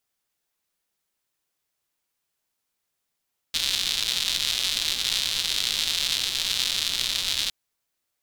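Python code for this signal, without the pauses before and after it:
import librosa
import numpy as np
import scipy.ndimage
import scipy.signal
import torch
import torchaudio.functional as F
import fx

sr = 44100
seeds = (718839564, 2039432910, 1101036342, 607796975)

y = fx.rain(sr, seeds[0], length_s=3.96, drops_per_s=220.0, hz=3700.0, bed_db=-17.5)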